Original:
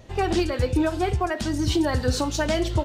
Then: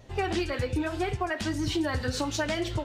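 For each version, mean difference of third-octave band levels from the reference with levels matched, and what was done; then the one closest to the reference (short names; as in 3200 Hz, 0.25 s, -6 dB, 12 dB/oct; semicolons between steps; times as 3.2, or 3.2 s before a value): 2.0 dB: dynamic EQ 2100 Hz, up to +6 dB, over -41 dBFS, Q 0.83; compressor, threshold -21 dBFS, peak gain reduction 5.5 dB; flange 1.8 Hz, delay 6.6 ms, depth 4.3 ms, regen -38%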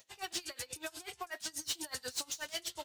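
11.5 dB: differentiator; soft clip -35 dBFS, distortion -10 dB; dB-linear tremolo 8.2 Hz, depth 23 dB; gain +6.5 dB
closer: first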